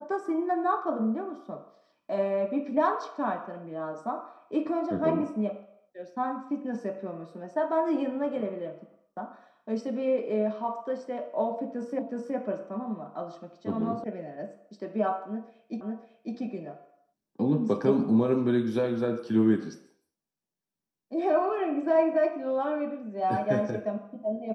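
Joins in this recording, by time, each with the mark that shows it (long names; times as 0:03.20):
0:11.99: the same again, the last 0.37 s
0:14.04: cut off before it has died away
0:15.81: the same again, the last 0.55 s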